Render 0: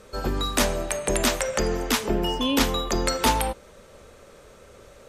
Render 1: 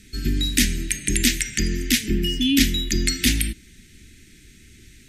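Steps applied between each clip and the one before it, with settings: elliptic band-stop 310–1900 Hz, stop band 40 dB; trim +5.5 dB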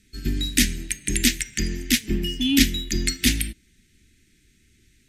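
in parallel at -7 dB: crossover distortion -34 dBFS; on the sum: upward expansion 1.5:1, over -29 dBFS; trim -2 dB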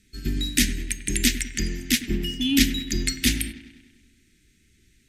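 feedback echo behind a low-pass 99 ms, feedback 59%, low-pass 2.4 kHz, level -12 dB; trim -1.5 dB

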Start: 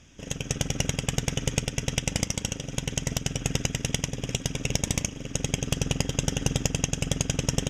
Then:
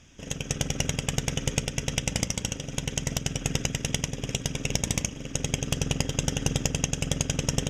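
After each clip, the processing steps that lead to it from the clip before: hum notches 60/120/180/240/300/360/420/480/540/600 Hz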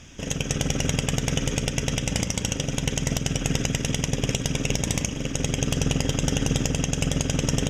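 peak limiter -18.5 dBFS, peak gain reduction 10.5 dB; trim +8.5 dB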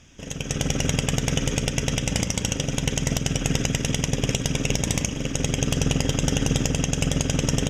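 level rider gain up to 9 dB; trim -6 dB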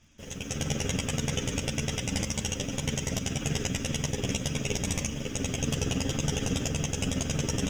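in parallel at -5 dB: bit crusher 7-bit; on the sum: three-phase chorus; trim -6.5 dB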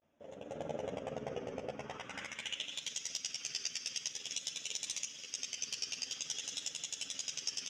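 vibrato 0.48 Hz 91 cents; band-pass sweep 620 Hz -> 4.7 kHz, 1.67–2.91 s; trim +1 dB

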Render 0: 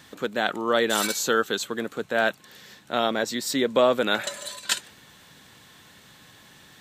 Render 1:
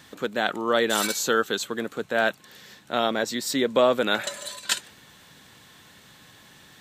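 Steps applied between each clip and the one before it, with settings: no audible change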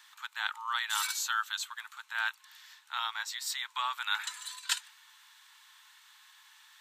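Chebyshev high-pass 880 Hz, order 6; trim -5.5 dB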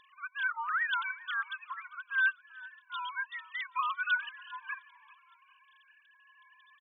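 formants replaced by sine waves; frequency-shifting echo 397 ms, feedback 42%, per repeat -33 Hz, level -20.5 dB; Shepard-style phaser rising 0.57 Hz; trim +4 dB

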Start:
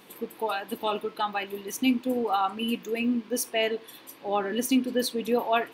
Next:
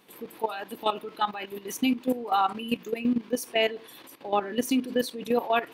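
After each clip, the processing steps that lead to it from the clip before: level held to a coarse grid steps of 13 dB; trim +4 dB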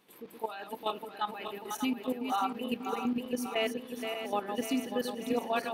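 backward echo that repeats 296 ms, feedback 73%, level -6.5 dB; trim -7 dB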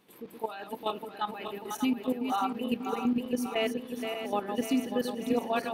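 bass shelf 390 Hz +5.5 dB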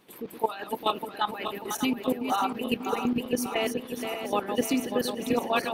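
harmonic-percussive split percussive +9 dB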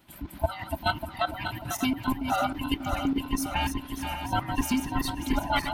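every band turned upside down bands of 500 Hz

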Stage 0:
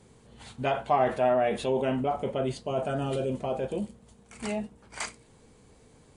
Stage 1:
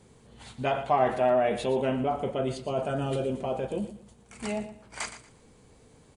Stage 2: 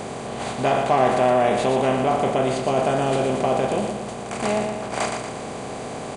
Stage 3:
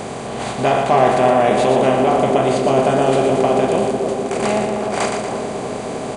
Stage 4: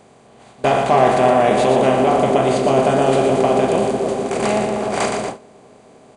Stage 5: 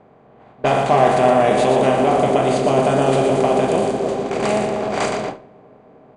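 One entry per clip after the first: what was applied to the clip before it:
feedback delay 117 ms, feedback 25%, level -12.5 dB
spectral levelling over time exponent 0.4; trim +2 dB
band-passed feedback delay 307 ms, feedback 80%, band-pass 370 Hz, level -4 dB; trim +4 dB
gate with hold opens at -12 dBFS
level-controlled noise filter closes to 1.6 kHz, open at -12 dBFS; on a send at -13.5 dB: reverberation RT60 0.55 s, pre-delay 6 ms; on the sum: trim -1 dB

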